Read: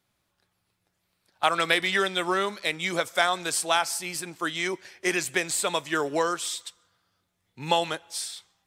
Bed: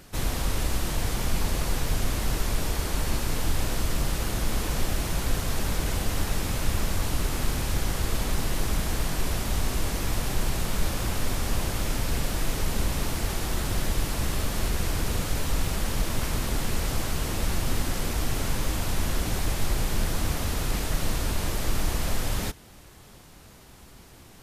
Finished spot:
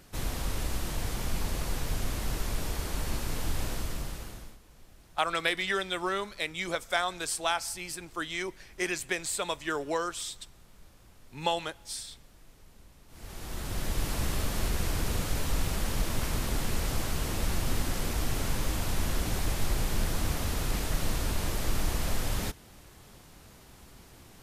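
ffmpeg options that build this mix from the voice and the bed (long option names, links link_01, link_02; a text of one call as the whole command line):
ffmpeg -i stem1.wav -i stem2.wav -filter_complex "[0:a]adelay=3750,volume=-5.5dB[link_01];[1:a]volume=20.5dB,afade=type=out:start_time=3.66:duration=0.92:silence=0.0668344,afade=type=in:start_time=13.08:duration=1.04:silence=0.0501187[link_02];[link_01][link_02]amix=inputs=2:normalize=0" out.wav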